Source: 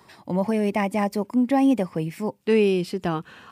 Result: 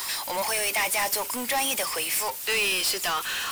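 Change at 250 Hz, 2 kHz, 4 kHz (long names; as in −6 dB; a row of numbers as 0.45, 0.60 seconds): −20.0, +8.0, +13.0 decibels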